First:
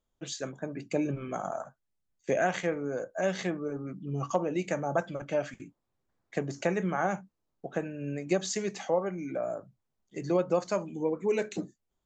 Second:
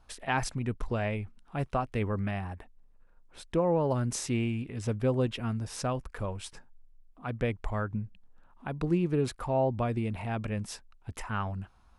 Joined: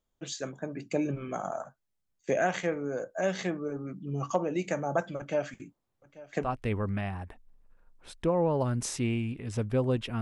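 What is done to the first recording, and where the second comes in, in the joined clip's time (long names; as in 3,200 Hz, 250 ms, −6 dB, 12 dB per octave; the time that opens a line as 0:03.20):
first
0:05.18–0:06.50: single-tap delay 839 ms −19 dB
0:06.45: continue with second from 0:01.75, crossfade 0.10 s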